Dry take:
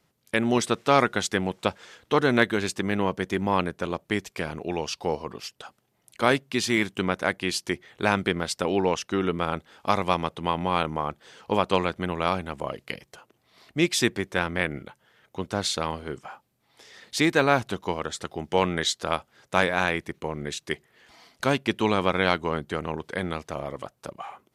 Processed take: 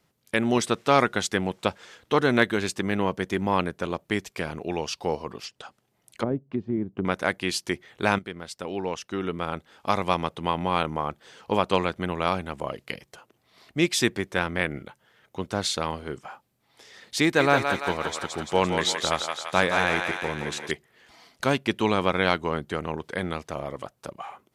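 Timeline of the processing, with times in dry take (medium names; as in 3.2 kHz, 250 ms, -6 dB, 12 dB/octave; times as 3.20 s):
5.42–7.05 s: low-pass that closes with the level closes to 350 Hz, closed at -22.5 dBFS
8.19–10.20 s: fade in linear, from -13 dB
17.23–20.71 s: thinning echo 170 ms, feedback 65%, high-pass 580 Hz, level -4 dB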